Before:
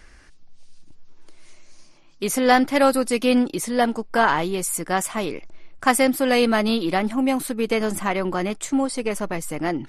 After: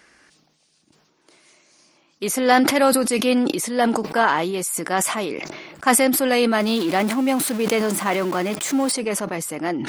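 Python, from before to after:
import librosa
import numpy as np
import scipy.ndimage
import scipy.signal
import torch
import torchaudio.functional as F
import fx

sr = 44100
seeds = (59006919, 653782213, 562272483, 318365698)

y = fx.zero_step(x, sr, step_db=-28.5, at=(6.6, 8.92))
y = scipy.signal.sosfilt(scipy.signal.butter(2, 190.0, 'highpass', fs=sr, output='sos'), y)
y = fx.sustainer(y, sr, db_per_s=36.0)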